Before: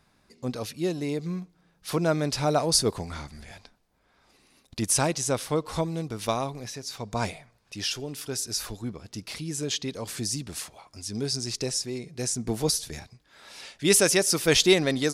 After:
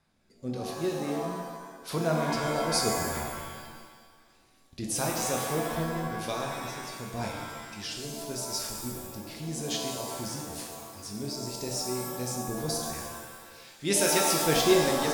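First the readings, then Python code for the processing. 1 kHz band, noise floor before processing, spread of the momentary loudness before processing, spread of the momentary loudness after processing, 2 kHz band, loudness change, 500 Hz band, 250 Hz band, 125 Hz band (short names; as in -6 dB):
+2.0 dB, -66 dBFS, 18 LU, 17 LU, -2.5 dB, -3.5 dB, -2.5 dB, -3.0 dB, -4.0 dB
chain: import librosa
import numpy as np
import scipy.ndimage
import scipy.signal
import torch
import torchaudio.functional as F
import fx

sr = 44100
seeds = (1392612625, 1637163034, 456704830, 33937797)

y = fx.rotary(x, sr, hz=0.9)
y = fx.doubler(y, sr, ms=24.0, db=-12)
y = fx.rev_shimmer(y, sr, seeds[0], rt60_s=1.3, semitones=7, shimmer_db=-2, drr_db=1.5)
y = y * librosa.db_to_amplitude(-5.0)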